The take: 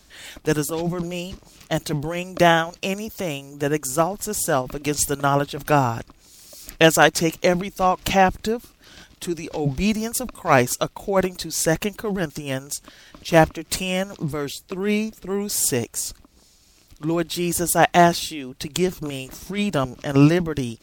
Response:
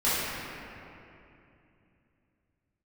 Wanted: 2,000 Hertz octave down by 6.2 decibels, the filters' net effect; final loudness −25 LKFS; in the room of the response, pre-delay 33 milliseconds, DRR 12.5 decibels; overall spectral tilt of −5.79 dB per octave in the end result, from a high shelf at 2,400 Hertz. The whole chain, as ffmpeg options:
-filter_complex "[0:a]equalizer=frequency=2000:width_type=o:gain=-4.5,highshelf=frequency=2400:gain=-8,asplit=2[link_01][link_02];[1:a]atrim=start_sample=2205,adelay=33[link_03];[link_02][link_03]afir=irnorm=-1:irlink=0,volume=-27dB[link_04];[link_01][link_04]amix=inputs=2:normalize=0,volume=-1.5dB"

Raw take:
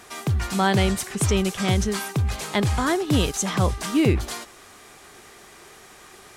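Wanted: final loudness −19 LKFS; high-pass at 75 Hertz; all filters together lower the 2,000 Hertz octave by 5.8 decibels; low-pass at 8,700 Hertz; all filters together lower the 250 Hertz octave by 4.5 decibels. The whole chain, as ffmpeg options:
ffmpeg -i in.wav -af "highpass=75,lowpass=8700,equalizer=frequency=250:width_type=o:gain=-6.5,equalizer=frequency=2000:width_type=o:gain=-7.5,volume=7dB" out.wav

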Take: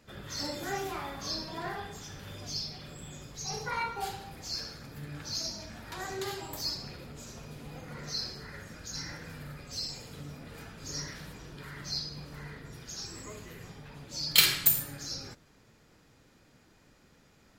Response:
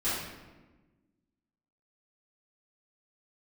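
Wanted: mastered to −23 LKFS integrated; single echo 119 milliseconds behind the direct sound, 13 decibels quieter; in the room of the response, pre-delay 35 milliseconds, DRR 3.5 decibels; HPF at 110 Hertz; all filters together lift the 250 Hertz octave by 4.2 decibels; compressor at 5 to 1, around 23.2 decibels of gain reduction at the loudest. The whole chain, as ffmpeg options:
-filter_complex "[0:a]highpass=110,equalizer=frequency=250:width_type=o:gain=6.5,acompressor=threshold=-44dB:ratio=5,aecho=1:1:119:0.224,asplit=2[link_01][link_02];[1:a]atrim=start_sample=2205,adelay=35[link_03];[link_02][link_03]afir=irnorm=-1:irlink=0,volume=-12.5dB[link_04];[link_01][link_04]amix=inputs=2:normalize=0,volume=21dB"

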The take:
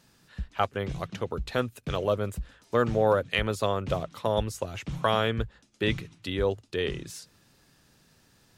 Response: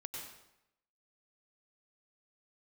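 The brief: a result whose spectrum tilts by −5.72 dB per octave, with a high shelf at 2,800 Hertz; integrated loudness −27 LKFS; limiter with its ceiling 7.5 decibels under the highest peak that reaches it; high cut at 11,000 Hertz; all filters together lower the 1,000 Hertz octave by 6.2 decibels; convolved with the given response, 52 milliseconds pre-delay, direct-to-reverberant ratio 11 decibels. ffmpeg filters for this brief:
-filter_complex "[0:a]lowpass=11000,equalizer=frequency=1000:width_type=o:gain=-7.5,highshelf=frequency=2800:gain=-6,alimiter=limit=-21dB:level=0:latency=1,asplit=2[link_01][link_02];[1:a]atrim=start_sample=2205,adelay=52[link_03];[link_02][link_03]afir=irnorm=-1:irlink=0,volume=-9dB[link_04];[link_01][link_04]amix=inputs=2:normalize=0,volume=7dB"

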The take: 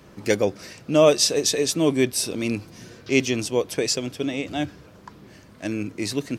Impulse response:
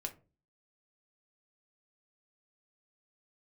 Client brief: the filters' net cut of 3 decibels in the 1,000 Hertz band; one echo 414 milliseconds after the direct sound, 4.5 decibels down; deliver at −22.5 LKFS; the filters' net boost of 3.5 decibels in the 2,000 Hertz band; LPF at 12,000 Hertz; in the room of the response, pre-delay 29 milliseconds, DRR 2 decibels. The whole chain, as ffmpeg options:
-filter_complex "[0:a]lowpass=12000,equalizer=frequency=1000:width_type=o:gain=-5.5,equalizer=frequency=2000:width_type=o:gain=5.5,aecho=1:1:414:0.596,asplit=2[link_01][link_02];[1:a]atrim=start_sample=2205,adelay=29[link_03];[link_02][link_03]afir=irnorm=-1:irlink=0,volume=-0.5dB[link_04];[link_01][link_04]amix=inputs=2:normalize=0,volume=-3dB"

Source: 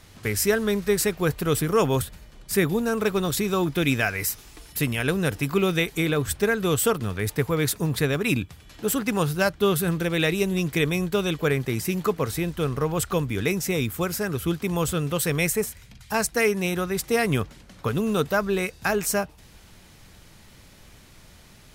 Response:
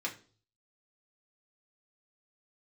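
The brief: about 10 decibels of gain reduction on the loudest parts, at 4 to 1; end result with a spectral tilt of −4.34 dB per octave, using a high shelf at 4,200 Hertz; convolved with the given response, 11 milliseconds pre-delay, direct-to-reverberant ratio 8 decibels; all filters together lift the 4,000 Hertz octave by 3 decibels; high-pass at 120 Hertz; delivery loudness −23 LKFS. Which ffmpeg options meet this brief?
-filter_complex "[0:a]highpass=120,equalizer=frequency=4000:width_type=o:gain=5.5,highshelf=frequency=4200:gain=-3.5,acompressor=threshold=-29dB:ratio=4,asplit=2[link_01][link_02];[1:a]atrim=start_sample=2205,adelay=11[link_03];[link_02][link_03]afir=irnorm=-1:irlink=0,volume=-11.5dB[link_04];[link_01][link_04]amix=inputs=2:normalize=0,volume=8.5dB"

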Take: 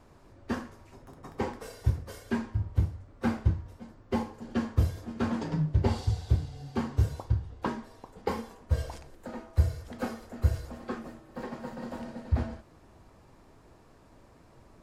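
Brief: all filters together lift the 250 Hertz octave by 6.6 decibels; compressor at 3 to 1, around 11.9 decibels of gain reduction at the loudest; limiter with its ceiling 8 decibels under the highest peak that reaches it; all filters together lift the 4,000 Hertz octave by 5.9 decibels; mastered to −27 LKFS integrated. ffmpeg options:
ffmpeg -i in.wav -af "equalizer=frequency=250:width_type=o:gain=7.5,equalizer=frequency=4000:width_type=o:gain=7.5,acompressor=threshold=-34dB:ratio=3,volume=13.5dB,alimiter=limit=-14.5dB:level=0:latency=1" out.wav

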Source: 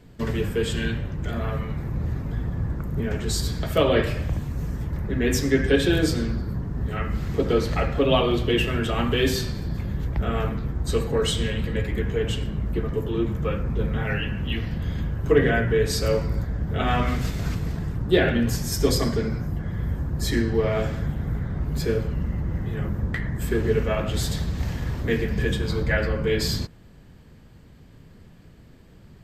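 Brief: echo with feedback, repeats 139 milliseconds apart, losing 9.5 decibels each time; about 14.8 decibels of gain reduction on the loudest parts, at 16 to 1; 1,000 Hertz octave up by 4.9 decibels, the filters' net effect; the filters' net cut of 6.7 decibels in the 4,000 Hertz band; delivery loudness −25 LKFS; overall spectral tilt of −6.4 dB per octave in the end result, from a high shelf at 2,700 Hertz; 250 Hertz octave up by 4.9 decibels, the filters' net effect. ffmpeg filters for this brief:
ffmpeg -i in.wav -af "equalizer=frequency=250:width_type=o:gain=6,equalizer=frequency=1000:width_type=o:gain=7.5,highshelf=frequency=2700:gain=-5,equalizer=frequency=4000:width_type=o:gain=-5.5,acompressor=threshold=-25dB:ratio=16,aecho=1:1:139|278|417|556:0.335|0.111|0.0365|0.012,volume=5.5dB" out.wav

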